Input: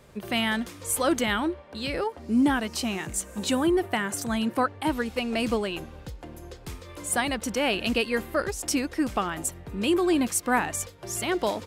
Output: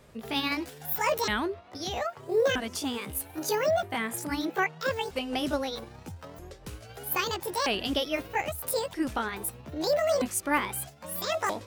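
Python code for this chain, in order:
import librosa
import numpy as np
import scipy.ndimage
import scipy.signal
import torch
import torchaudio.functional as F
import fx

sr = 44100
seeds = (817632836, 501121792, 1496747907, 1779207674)

y = fx.pitch_ramps(x, sr, semitones=11.5, every_ms=1277)
y = y * 10.0 ** (-2.0 / 20.0)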